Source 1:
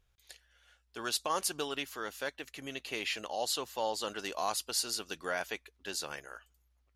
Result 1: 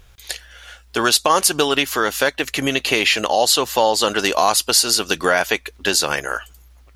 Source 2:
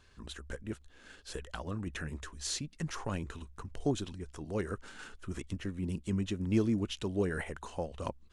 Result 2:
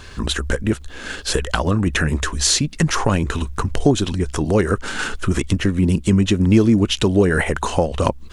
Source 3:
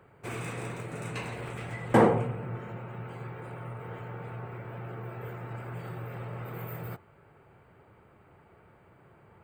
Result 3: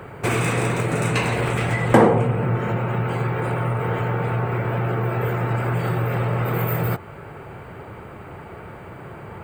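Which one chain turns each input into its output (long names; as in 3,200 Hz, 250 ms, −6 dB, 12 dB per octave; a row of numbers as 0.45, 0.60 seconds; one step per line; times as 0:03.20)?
downward compressor 2 to 1, threshold −42 dBFS
normalise the peak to −1.5 dBFS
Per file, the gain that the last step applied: +24.5, +24.5, +20.5 decibels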